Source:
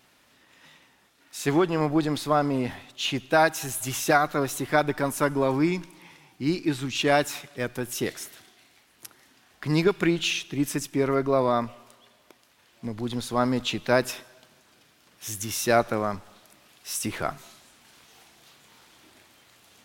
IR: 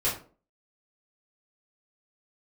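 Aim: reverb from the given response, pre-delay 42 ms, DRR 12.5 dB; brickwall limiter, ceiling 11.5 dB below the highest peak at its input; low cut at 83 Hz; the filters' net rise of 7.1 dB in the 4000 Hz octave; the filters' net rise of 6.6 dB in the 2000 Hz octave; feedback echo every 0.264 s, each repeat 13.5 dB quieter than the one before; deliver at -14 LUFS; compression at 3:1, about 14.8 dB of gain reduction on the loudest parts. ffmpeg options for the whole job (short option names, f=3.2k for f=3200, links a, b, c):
-filter_complex "[0:a]highpass=83,equalizer=f=2k:t=o:g=7.5,equalizer=f=4k:t=o:g=6.5,acompressor=threshold=-34dB:ratio=3,alimiter=level_in=4dB:limit=-24dB:level=0:latency=1,volume=-4dB,aecho=1:1:264|528:0.211|0.0444,asplit=2[a][b];[1:a]atrim=start_sample=2205,adelay=42[c];[b][c]afir=irnorm=-1:irlink=0,volume=-22dB[d];[a][d]amix=inputs=2:normalize=0,volume=25dB"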